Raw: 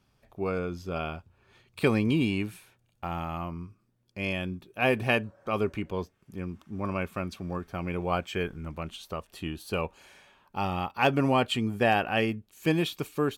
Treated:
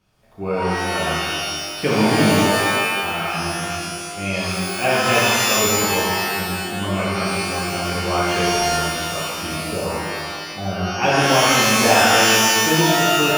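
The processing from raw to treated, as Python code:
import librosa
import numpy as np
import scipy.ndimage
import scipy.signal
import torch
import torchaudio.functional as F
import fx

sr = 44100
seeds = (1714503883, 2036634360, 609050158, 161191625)

y = fx.brickwall_bandstop(x, sr, low_hz=780.0, high_hz=9300.0, at=(9.64, 10.91))
y = fx.rev_shimmer(y, sr, seeds[0], rt60_s=1.8, semitones=12, shimmer_db=-2, drr_db=-7.5)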